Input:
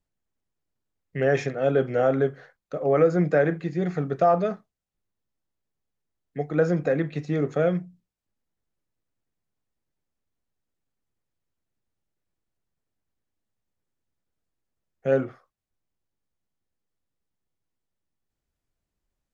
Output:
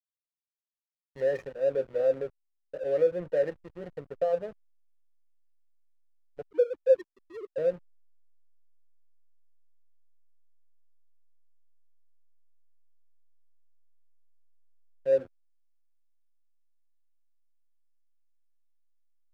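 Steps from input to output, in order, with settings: 6.42–7.58 s: formants replaced by sine waves; cascade formant filter e; hysteresis with a dead band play -38 dBFS

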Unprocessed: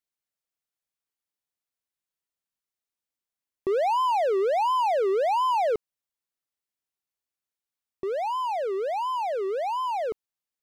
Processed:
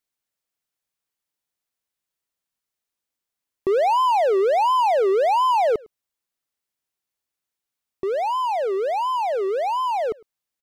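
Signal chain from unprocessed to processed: echo from a far wall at 18 m, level -25 dB; trim +5 dB

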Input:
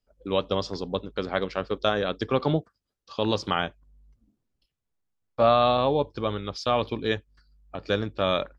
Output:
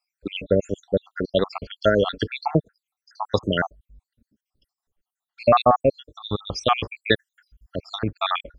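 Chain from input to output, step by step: random holes in the spectrogram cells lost 76%; 6.83–7.94 s: treble shelf 2.5 kHz +6 dB; trim +8.5 dB

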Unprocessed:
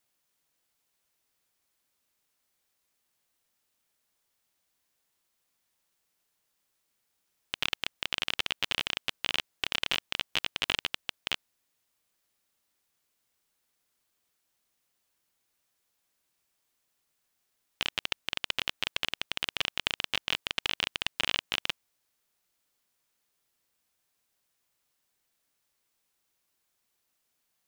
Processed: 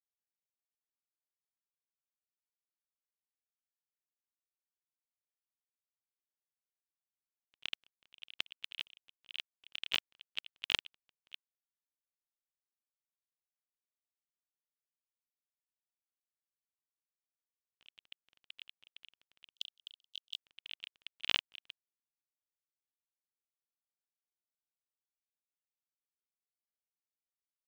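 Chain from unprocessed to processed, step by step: gate -29 dBFS, range -42 dB; 19.54–20.42 s: steep high-pass 3 kHz 72 dB/octave; trim +3 dB

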